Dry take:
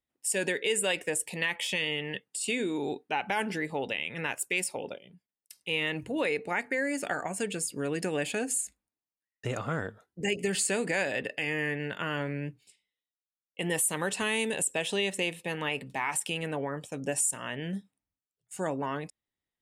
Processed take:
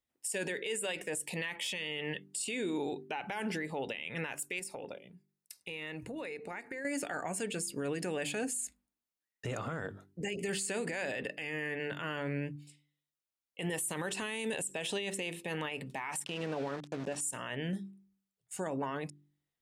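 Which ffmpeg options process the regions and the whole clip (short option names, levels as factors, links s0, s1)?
-filter_complex "[0:a]asettb=1/sr,asplit=3[s0][s1][s2];[s0]atrim=end=4.594[s3];[s1]atrim=start=4.59:end=6.85,asetpts=PTS-STARTPTS,afade=t=in:d=0.004:c=qsin,afade=t=out:st=2.256:d=0.004:c=qsin,bandreject=f=3100:w=7.2,acompressor=threshold=0.0126:ratio=6:attack=3.2:release=140:knee=1:detection=peak[s4];[s2]atrim=start=6.846[s5];[s3][s4]acrossfade=d=0.004:c1=hsin:c2=qsin[s6];[s6][s5]acrossfade=d=0.004:c1=qsin:c2=hsin,asettb=1/sr,asplit=3[s7][s8][s9];[s7]atrim=end=16.244[s10];[s8]atrim=start=16.24:end=17.21,asetpts=PTS-STARTPTS,afade=t=in:d=0.004:c=qsin,afade=t=out:st=0.966:d=0.004:c=qsin,equalizer=f=2200:t=o:w=0.57:g=-8,aeval=exprs='val(0)*gte(abs(val(0)),0.0112)':c=same,highpass=110,lowpass=5000[s11];[s9]atrim=start=17.206[s12];[s10][s11]acrossfade=d=0.004:c1=hsin:c2=qsin[s13];[s13][s12]acrossfade=d=0.004:c1=qsin:c2=hsin,bandreject=f=48.73:t=h:w=4,bandreject=f=97.46:t=h:w=4,bandreject=f=146.19:t=h:w=4,bandreject=f=194.92:t=h:w=4,bandreject=f=243.65:t=h:w=4,bandreject=f=292.38:t=h:w=4,bandreject=f=341.11:t=h:w=4,bandreject=f=389.84:t=h:w=4,alimiter=level_in=1.41:limit=0.0631:level=0:latency=1:release=44,volume=0.708"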